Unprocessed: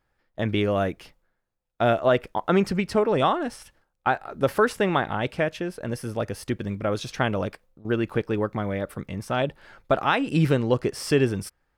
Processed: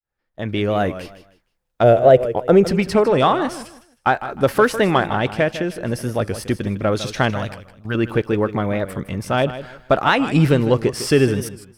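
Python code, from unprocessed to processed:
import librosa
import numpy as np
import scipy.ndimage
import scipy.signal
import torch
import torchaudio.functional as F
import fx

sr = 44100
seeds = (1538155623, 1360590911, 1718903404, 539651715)

p1 = fx.fade_in_head(x, sr, length_s=0.98)
p2 = fx.peak_eq(p1, sr, hz=380.0, db=-13.5, octaves=1.3, at=(7.3, 7.95))
p3 = 10.0 ** (-20.5 / 20.0) * np.tanh(p2 / 10.0 ** (-20.5 / 20.0))
p4 = p2 + F.gain(torch.from_numpy(p3), -8.0).numpy()
p5 = fx.graphic_eq(p4, sr, hz=(125, 250, 500, 1000, 2000, 4000), db=(4, -5, 11, -10, -4, -8), at=(1.83, 2.66))
p6 = p5 + fx.echo_feedback(p5, sr, ms=155, feedback_pct=27, wet_db=-13, dry=0)
p7 = fx.record_warp(p6, sr, rpm=45.0, depth_cents=100.0)
y = F.gain(torch.from_numpy(p7), 4.0).numpy()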